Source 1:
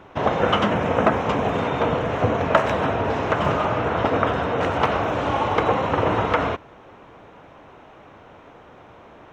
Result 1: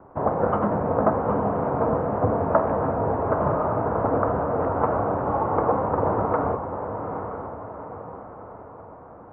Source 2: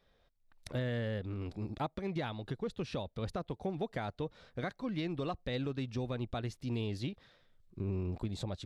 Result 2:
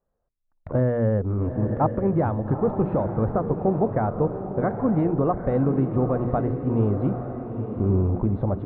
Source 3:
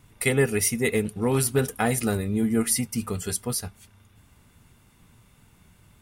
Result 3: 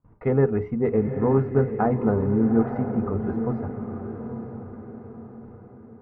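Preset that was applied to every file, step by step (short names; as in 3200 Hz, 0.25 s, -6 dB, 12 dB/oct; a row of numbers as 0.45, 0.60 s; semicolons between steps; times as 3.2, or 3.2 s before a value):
gate with hold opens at -44 dBFS; LPF 1200 Hz 24 dB/oct; notches 60/120/180/240/300/360/420 Hz; on a send: diffused feedback echo 0.86 s, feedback 46%, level -7.5 dB; on the sum: match loudness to -24 LUFS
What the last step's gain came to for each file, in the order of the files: -1.5, +15.0, +3.0 dB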